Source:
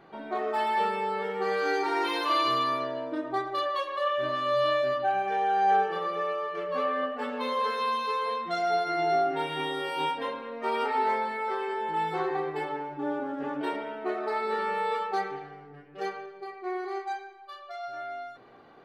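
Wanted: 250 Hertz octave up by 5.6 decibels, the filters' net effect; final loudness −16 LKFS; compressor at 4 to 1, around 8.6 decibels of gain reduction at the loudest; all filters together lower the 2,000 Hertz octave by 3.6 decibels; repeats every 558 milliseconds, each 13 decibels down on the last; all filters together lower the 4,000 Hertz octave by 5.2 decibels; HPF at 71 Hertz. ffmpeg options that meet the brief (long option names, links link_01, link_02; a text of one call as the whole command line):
ffmpeg -i in.wav -af "highpass=71,equalizer=frequency=250:width_type=o:gain=7.5,equalizer=frequency=2000:width_type=o:gain=-3.5,equalizer=frequency=4000:width_type=o:gain=-5.5,acompressor=threshold=-31dB:ratio=4,aecho=1:1:558|1116|1674:0.224|0.0493|0.0108,volume=18dB" out.wav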